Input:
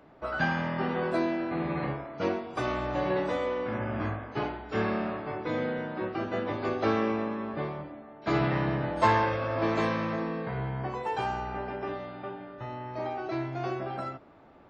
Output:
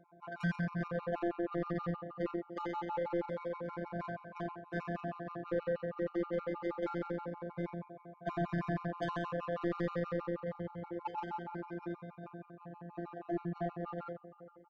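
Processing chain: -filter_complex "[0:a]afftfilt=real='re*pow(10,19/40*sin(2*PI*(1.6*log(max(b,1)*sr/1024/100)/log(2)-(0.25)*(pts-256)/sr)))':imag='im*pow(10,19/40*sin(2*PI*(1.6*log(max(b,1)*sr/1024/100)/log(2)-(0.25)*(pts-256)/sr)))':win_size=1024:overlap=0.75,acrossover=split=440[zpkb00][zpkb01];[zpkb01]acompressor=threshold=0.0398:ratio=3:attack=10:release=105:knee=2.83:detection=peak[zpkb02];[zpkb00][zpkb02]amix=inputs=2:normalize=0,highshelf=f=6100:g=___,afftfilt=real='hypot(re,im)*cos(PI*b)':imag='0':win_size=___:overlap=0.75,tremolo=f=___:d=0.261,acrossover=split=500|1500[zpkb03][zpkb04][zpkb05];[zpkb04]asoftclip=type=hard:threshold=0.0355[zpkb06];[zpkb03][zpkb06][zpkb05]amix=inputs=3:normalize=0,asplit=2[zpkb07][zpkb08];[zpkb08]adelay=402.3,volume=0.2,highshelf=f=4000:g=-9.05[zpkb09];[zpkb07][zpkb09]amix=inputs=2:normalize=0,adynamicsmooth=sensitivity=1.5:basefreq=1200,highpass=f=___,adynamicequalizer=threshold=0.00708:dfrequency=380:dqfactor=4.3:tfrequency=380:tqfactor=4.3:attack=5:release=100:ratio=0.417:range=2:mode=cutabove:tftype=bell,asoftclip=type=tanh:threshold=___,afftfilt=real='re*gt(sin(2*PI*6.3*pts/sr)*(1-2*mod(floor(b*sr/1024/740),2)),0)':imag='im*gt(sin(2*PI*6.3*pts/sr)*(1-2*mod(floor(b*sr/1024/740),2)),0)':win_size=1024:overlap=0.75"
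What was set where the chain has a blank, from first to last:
2.5, 1024, 150, 56, 0.0501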